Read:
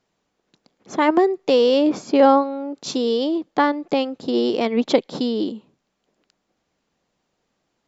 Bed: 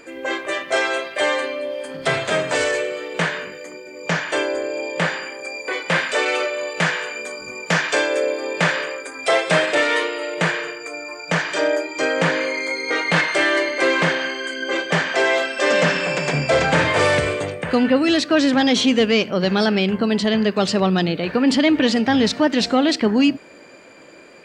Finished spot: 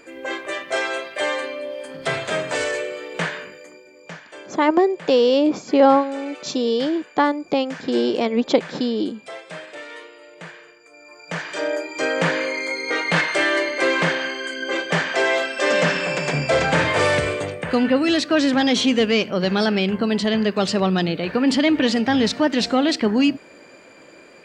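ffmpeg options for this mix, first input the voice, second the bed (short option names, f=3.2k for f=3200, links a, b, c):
-filter_complex "[0:a]adelay=3600,volume=0dB[a];[1:a]volume=13.5dB,afade=t=out:st=3.26:d=0.94:silence=0.177828,afade=t=in:st=10.89:d=1.22:silence=0.141254[b];[a][b]amix=inputs=2:normalize=0"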